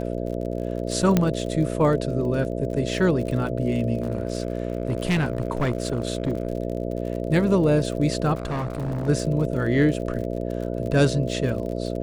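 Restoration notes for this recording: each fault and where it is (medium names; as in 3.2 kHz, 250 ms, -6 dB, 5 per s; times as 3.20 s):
buzz 60 Hz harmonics 11 -28 dBFS
crackle 52 per s -32 dBFS
1.17 s: pop -6 dBFS
4.02–6.47 s: clipped -18 dBFS
8.35–9.09 s: clipped -23.5 dBFS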